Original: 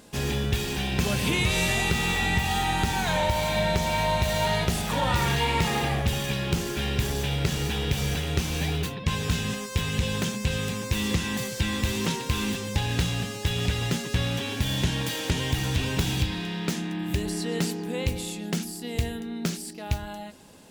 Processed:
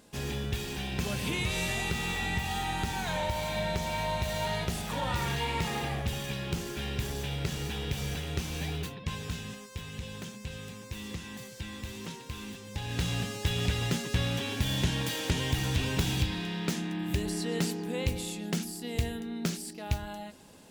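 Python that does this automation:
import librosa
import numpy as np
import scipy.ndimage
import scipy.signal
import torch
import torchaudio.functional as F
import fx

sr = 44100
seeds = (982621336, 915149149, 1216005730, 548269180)

y = fx.gain(x, sr, db=fx.line((8.84, -7.0), (9.77, -13.5), (12.64, -13.5), (13.13, -3.0)))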